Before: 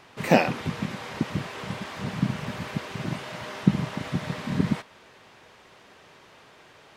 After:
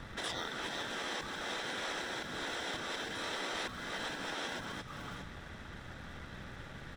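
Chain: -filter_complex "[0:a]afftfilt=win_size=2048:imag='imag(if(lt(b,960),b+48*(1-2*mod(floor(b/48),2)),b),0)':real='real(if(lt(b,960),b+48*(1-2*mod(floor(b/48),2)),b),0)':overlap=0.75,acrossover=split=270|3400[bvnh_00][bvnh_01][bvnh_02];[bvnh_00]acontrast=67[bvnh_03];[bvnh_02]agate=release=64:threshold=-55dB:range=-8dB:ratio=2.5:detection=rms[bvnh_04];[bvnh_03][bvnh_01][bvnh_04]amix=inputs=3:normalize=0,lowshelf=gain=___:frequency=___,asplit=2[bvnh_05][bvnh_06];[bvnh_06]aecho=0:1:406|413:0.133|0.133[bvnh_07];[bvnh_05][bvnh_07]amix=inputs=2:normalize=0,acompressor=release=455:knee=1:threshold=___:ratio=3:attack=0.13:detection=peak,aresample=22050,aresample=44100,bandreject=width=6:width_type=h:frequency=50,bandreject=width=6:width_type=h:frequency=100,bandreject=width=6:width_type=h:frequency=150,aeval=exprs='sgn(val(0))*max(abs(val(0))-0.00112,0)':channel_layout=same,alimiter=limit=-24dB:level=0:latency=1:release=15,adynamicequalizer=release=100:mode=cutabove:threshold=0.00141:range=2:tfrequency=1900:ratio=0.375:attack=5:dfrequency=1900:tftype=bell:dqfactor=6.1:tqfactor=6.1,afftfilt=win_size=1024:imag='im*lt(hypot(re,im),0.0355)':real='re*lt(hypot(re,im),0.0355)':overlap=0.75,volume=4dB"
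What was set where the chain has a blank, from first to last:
10.5, 170, -27dB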